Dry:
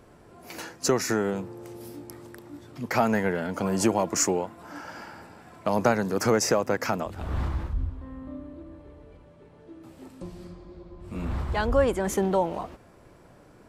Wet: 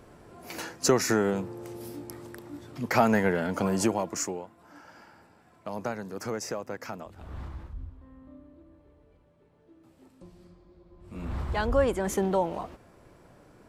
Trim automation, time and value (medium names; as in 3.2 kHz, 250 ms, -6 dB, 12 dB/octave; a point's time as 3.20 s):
3.60 s +1 dB
4.46 s -11 dB
10.81 s -11 dB
11.44 s -2 dB